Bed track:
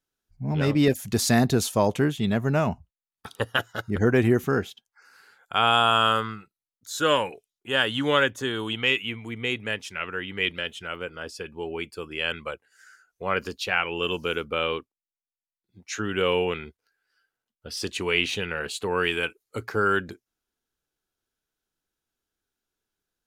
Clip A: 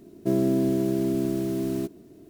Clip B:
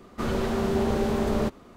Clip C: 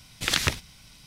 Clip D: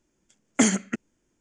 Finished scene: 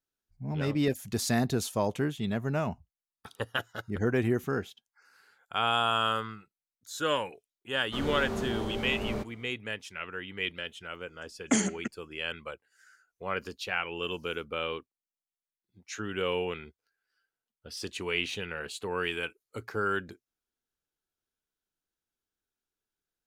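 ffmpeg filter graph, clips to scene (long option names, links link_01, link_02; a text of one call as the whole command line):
ffmpeg -i bed.wav -i cue0.wav -i cue1.wav -i cue2.wav -i cue3.wav -filter_complex "[0:a]volume=-7dB[link_01];[2:a]alimiter=limit=-16dB:level=0:latency=1:release=268,atrim=end=1.76,asetpts=PTS-STARTPTS,volume=-7.5dB,afade=type=in:duration=0.004:curve=hsin,afade=type=out:start_time=1.756:duration=0.004:curve=hsin,adelay=7740[link_02];[4:a]atrim=end=1.4,asetpts=PTS-STARTPTS,volume=-5.5dB,afade=type=in:duration=0.004:curve=hsin,afade=type=out:start_time=1.396:duration=0.004:curve=hsin,adelay=10920[link_03];[link_01][link_02][link_03]amix=inputs=3:normalize=0" out.wav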